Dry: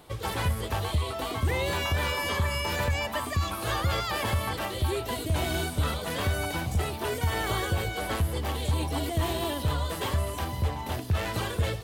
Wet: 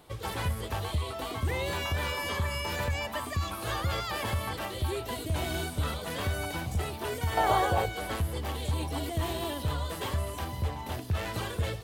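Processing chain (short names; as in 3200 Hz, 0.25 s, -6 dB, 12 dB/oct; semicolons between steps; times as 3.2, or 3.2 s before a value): 7.37–7.86 bell 760 Hz +14.5 dB 1.3 oct; gain -3.5 dB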